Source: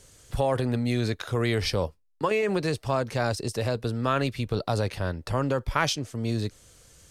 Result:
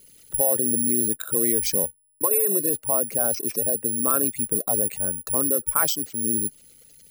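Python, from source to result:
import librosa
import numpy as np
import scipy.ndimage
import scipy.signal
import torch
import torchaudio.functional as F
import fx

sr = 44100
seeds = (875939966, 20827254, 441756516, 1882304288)

y = fx.envelope_sharpen(x, sr, power=2.0)
y = (np.kron(y[::4], np.eye(4)[0]) * 4)[:len(y)]
y = fx.low_shelf_res(y, sr, hz=150.0, db=-9.0, q=1.5)
y = y * librosa.db_to_amplitude(-2.5)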